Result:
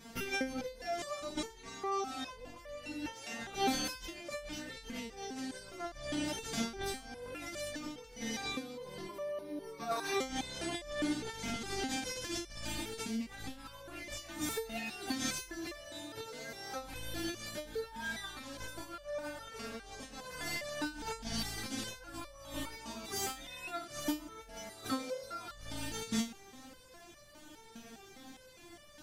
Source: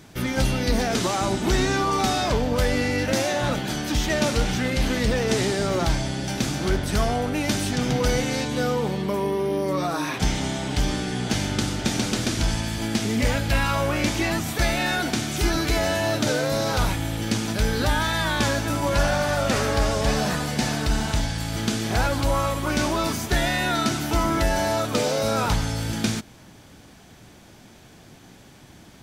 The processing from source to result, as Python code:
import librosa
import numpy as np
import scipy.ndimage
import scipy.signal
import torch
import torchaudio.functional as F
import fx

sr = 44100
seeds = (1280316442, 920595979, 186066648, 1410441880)

y = fx.over_compress(x, sr, threshold_db=-28.0, ratio=-0.5)
y = np.clip(10.0 ** (15.0 / 20.0) * y, -1.0, 1.0) / 10.0 ** (15.0 / 20.0)
y = fx.resonator_held(y, sr, hz=4.9, low_hz=230.0, high_hz=590.0)
y = y * 10.0 ** (5.0 / 20.0)